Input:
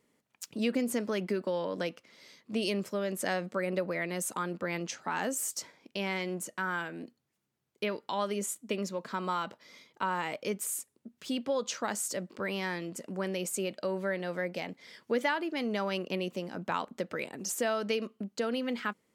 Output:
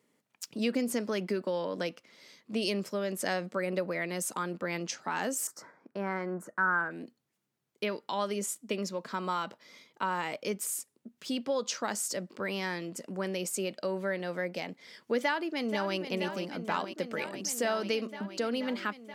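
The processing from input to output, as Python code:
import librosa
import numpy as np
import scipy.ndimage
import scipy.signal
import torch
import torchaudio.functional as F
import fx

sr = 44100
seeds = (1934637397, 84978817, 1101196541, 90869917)

y = fx.high_shelf_res(x, sr, hz=2100.0, db=-12.5, q=3.0, at=(5.47, 6.91))
y = fx.echo_throw(y, sr, start_s=15.2, length_s=0.77, ms=480, feedback_pct=85, wet_db=-9.0)
y = fx.dynamic_eq(y, sr, hz=5100.0, q=3.1, threshold_db=-57.0, ratio=4.0, max_db=5)
y = scipy.signal.sosfilt(scipy.signal.butter(2, 110.0, 'highpass', fs=sr, output='sos'), y)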